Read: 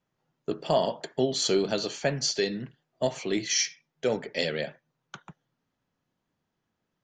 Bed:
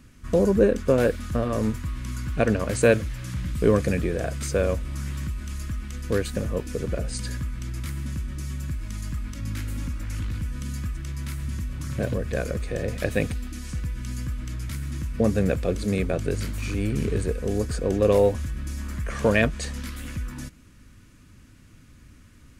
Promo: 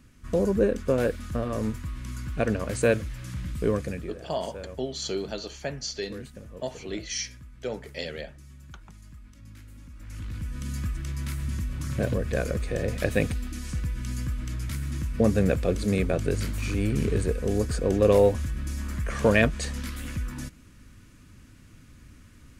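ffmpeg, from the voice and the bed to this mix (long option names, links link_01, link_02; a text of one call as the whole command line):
ffmpeg -i stem1.wav -i stem2.wav -filter_complex "[0:a]adelay=3600,volume=-6dB[link_01];[1:a]volume=12.5dB,afade=type=out:start_time=3.52:duration=0.69:silence=0.237137,afade=type=in:start_time=9.89:duration=0.95:silence=0.149624[link_02];[link_01][link_02]amix=inputs=2:normalize=0" out.wav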